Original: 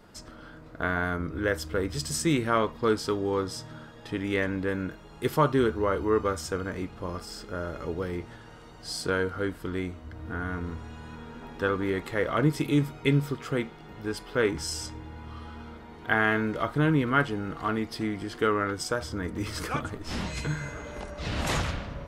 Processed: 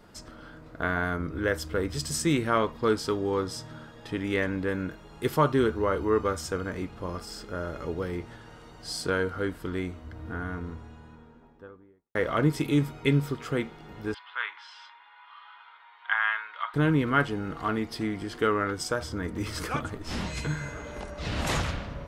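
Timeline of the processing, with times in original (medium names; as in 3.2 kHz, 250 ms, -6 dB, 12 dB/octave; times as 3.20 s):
9.96–12.15 s: studio fade out
14.14–16.74 s: Chebyshev band-pass 960–3600 Hz, order 3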